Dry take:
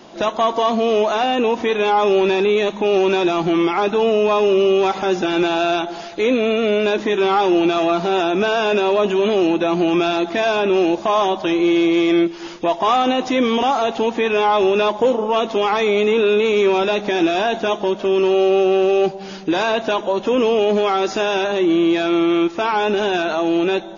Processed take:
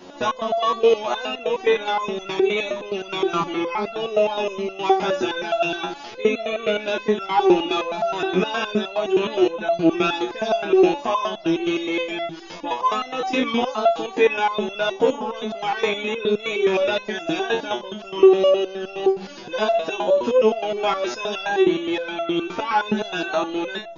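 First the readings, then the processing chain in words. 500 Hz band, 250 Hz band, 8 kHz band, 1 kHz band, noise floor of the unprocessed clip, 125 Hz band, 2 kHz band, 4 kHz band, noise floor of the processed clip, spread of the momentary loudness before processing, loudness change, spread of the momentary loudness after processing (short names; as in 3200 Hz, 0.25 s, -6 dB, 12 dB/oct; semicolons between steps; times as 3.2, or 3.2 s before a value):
-4.0 dB, -6.0 dB, n/a, -4.5 dB, -32 dBFS, -5.0 dB, -3.5 dB, -3.5 dB, -38 dBFS, 4 LU, -4.5 dB, 8 LU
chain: pre-echo 0.114 s -19.5 dB; stepped resonator 9.6 Hz 91–680 Hz; gain +9 dB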